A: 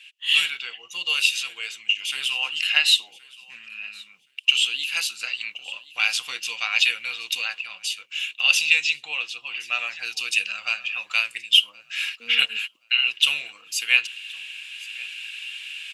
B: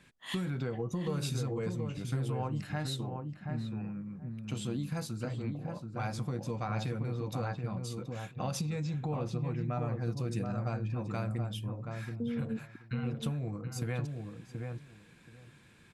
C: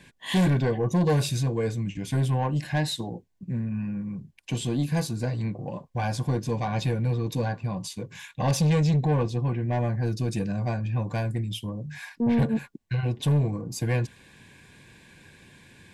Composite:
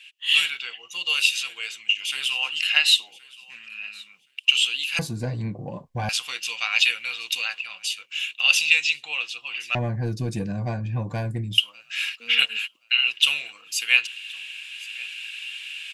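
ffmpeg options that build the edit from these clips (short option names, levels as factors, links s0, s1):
-filter_complex "[2:a]asplit=2[s0][s1];[0:a]asplit=3[s2][s3][s4];[s2]atrim=end=4.992[s5];[s0]atrim=start=4.988:end=6.092[s6];[s3]atrim=start=6.088:end=9.752[s7];[s1]atrim=start=9.748:end=11.582[s8];[s4]atrim=start=11.578[s9];[s5][s6]acrossfade=d=0.004:c1=hsin:c2=hsin[s10];[s10][s7]acrossfade=d=0.004:c1=hsin:c2=hsin[s11];[s11][s8]acrossfade=d=0.004:c1=hsin:c2=hsin[s12];[s12][s9]acrossfade=d=0.004:c1=hsin:c2=hsin"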